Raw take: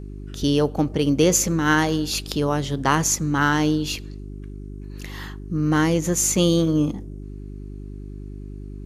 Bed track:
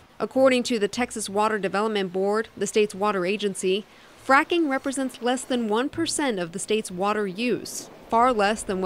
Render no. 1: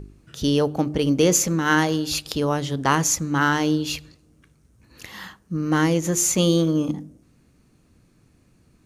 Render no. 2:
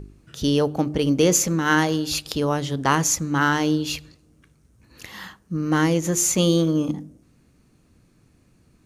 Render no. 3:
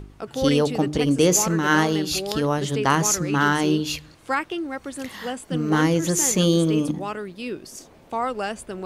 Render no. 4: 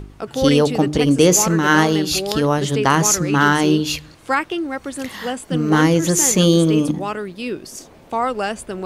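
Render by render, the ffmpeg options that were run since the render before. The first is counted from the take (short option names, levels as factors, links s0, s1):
-af "bandreject=f=50:t=h:w=4,bandreject=f=100:t=h:w=4,bandreject=f=150:t=h:w=4,bandreject=f=200:t=h:w=4,bandreject=f=250:t=h:w=4,bandreject=f=300:t=h:w=4,bandreject=f=350:t=h:w=4,bandreject=f=400:t=h:w=4"
-af anull
-filter_complex "[1:a]volume=0.473[s0];[0:a][s0]amix=inputs=2:normalize=0"
-af "volume=1.78,alimiter=limit=0.794:level=0:latency=1"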